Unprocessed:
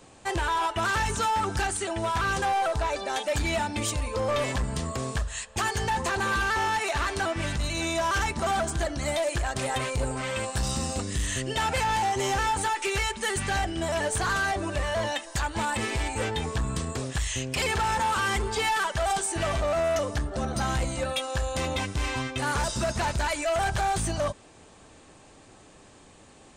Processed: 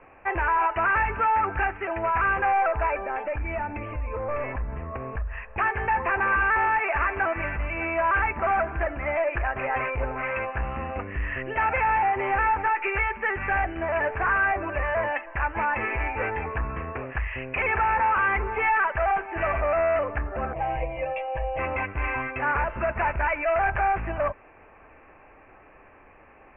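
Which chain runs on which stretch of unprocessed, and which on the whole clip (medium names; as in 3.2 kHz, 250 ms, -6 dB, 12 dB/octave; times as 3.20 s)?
2.98–5.58 s: tilt EQ -2 dB/octave + compression 3:1, threshold -29 dBFS
20.53–21.59 s: static phaser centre 580 Hz, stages 4 + comb 6.3 ms, depth 79%
whole clip: steep low-pass 2.6 kHz 96 dB/octave; peaking EQ 160 Hz -13.5 dB 2.4 oct; trim +5.5 dB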